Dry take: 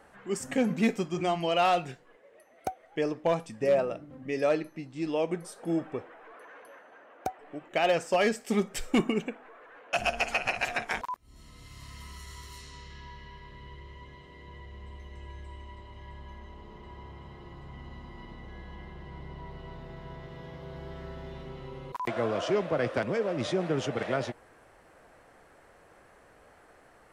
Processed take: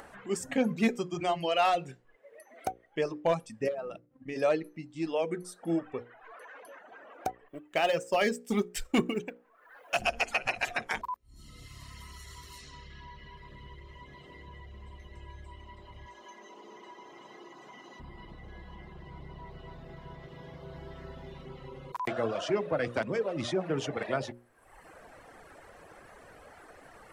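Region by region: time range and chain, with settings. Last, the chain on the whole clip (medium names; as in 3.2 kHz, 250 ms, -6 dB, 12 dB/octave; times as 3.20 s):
3.68–4.36 s: expander -39 dBFS + compression, threshold -31 dBFS
7.48–10.02 s: companding laws mixed up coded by A + treble shelf 5.8 kHz +2.5 dB
16.06–18.00 s: high-pass 260 Hz 24 dB/octave + peaking EQ 6.2 kHz +14 dB 0.29 oct
whole clip: reverb removal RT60 1.1 s; upward compressor, threshold -43 dBFS; hum notches 60/120/180/240/300/360/420/480/540 Hz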